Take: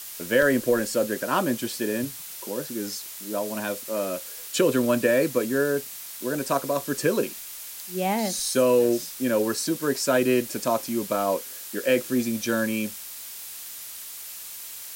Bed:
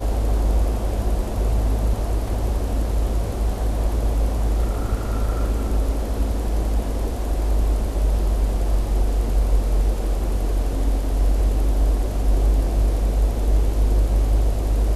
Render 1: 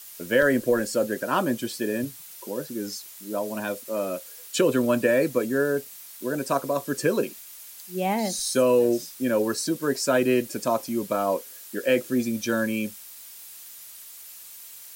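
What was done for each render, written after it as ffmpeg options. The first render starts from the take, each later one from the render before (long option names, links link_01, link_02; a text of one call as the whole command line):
ffmpeg -i in.wav -af "afftdn=noise_reduction=7:noise_floor=-39" out.wav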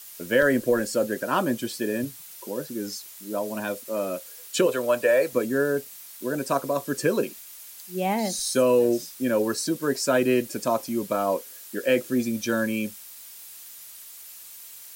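ffmpeg -i in.wav -filter_complex "[0:a]asettb=1/sr,asplit=3[link_01][link_02][link_03];[link_01]atrim=end=4.664[link_04];[link_02]atrim=start=4.66:end=5.33,asetpts=PTS-STARTPTS,afade=type=in:duration=0.004:curve=qsin,afade=type=out:start_time=0.666:duration=0.004:curve=qsin,lowshelf=frequency=380:width_type=q:width=1.5:gain=-10[link_05];[link_03]atrim=start=5.326[link_06];[link_04][link_05]acrossfade=duration=0.004:curve1=hsin:curve2=qsin[link_07];[link_07][link_06]acrossfade=duration=0.004:curve1=qsin:curve2=hsin" out.wav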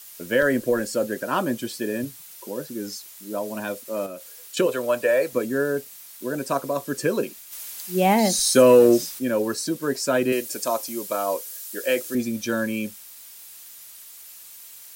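ffmpeg -i in.wav -filter_complex "[0:a]asettb=1/sr,asplit=3[link_01][link_02][link_03];[link_01]atrim=end=4.064[link_04];[link_02]atrim=start=4.06:end=4.57,asetpts=PTS-STARTPTS,afade=type=in:duration=0.004:curve=qsin,afade=type=out:start_time=0.506:duration=0.004:curve=qsin,acompressor=threshold=-34dB:ratio=3:attack=3.2:release=140:knee=1:detection=peak[link_05];[link_03]atrim=start=4.566[link_06];[link_04][link_05]acrossfade=duration=0.004:curve1=hsin:curve2=qsin[link_07];[link_07][link_06]acrossfade=duration=0.004:curve1=qsin:curve2=hsin,asplit=3[link_08][link_09][link_10];[link_08]afade=type=out:start_time=7.51:duration=0.02[link_11];[link_09]acontrast=84,afade=type=in:start_time=7.51:duration=0.02,afade=type=out:start_time=9.18:duration=0.02[link_12];[link_10]afade=type=in:start_time=9.18:duration=0.02[link_13];[link_11][link_12][link_13]amix=inputs=3:normalize=0,asettb=1/sr,asplit=3[link_14][link_15][link_16];[link_14]atrim=end=10.324[link_17];[link_15]atrim=start=10.32:end=12.15,asetpts=PTS-STARTPTS,afade=type=in:duration=0.004:curve=qsin,afade=type=out:start_time=1.826:duration=0.004:curve=qsin,bass=frequency=250:gain=-13,treble=frequency=4000:gain=7[link_18];[link_16]atrim=start=12.146[link_19];[link_17][link_18]acrossfade=duration=0.004:curve1=hsin:curve2=qsin[link_20];[link_20][link_19]acrossfade=duration=0.004:curve1=qsin:curve2=hsin" out.wav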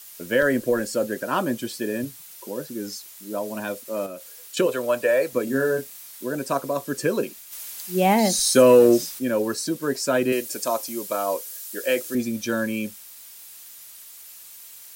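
ffmpeg -i in.wav -filter_complex "[0:a]asettb=1/sr,asplit=3[link_01][link_02][link_03];[link_01]atrim=end=5.444[link_04];[link_02]atrim=start=5.44:end=6.25,asetpts=PTS-STARTPTS,afade=type=in:duration=0.004:curve=qsin,afade=type=out:start_time=0.806:duration=0.004:curve=qsin,asplit=2[link_05][link_06];[link_06]adelay=30,volume=-4dB[link_07];[link_05][link_07]amix=inputs=2:normalize=0,atrim=end_sample=35721[link_08];[link_03]atrim=start=6.246[link_09];[link_04][link_08]acrossfade=duration=0.004:curve1=hsin:curve2=qsin[link_10];[link_10][link_09]acrossfade=duration=0.004:curve1=qsin:curve2=hsin" out.wav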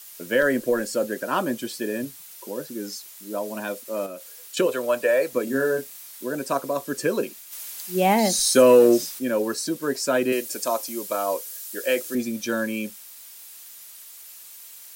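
ffmpeg -i in.wav -af "equalizer=frequency=85:width=1.3:gain=-12.5" out.wav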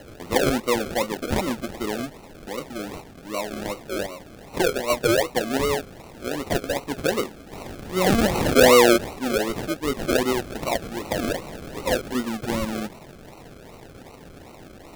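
ffmpeg -i in.wav -af "acrusher=samples=37:mix=1:aa=0.000001:lfo=1:lforange=22.2:lforate=2.6" out.wav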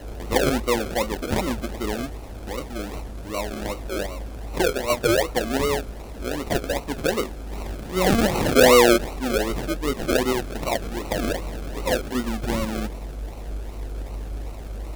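ffmpeg -i in.wav -i bed.wav -filter_complex "[1:a]volume=-14dB[link_01];[0:a][link_01]amix=inputs=2:normalize=0" out.wav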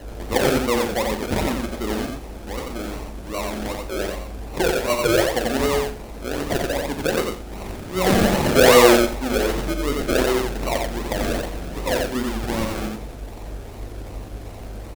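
ffmpeg -i in.wav -filter_complex "[0:a]asplit=2[link_01][link_02];[link_02]adelay=42,volume=-10.5dB[link_03];[link_01][link_03]amix=inputs=2:normalize=0,aecho=1:1:89|178|267:0.708|0.12|0.0205" out.wav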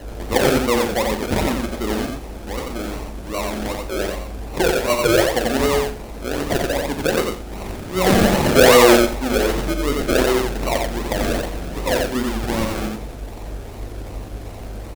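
ffmpeg -i in.wav -af "volume=2.5dB,alimiter=limit=-2dB:level=0:latency=1" out.wav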